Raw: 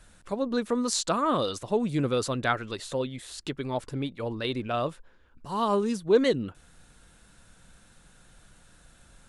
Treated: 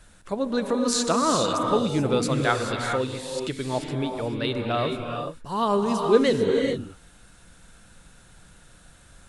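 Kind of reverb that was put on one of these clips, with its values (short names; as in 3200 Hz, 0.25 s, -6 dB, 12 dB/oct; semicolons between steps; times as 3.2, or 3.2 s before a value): non-linear reverb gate 0.46 s rising, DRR 2.5 dB; gain +2.5 dB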